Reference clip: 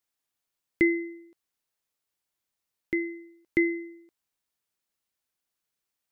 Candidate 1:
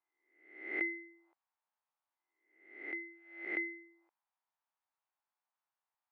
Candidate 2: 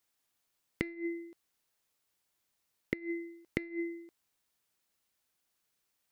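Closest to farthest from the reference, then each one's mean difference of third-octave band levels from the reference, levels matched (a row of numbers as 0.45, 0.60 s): 1, 2; 3.0, 5.0 dB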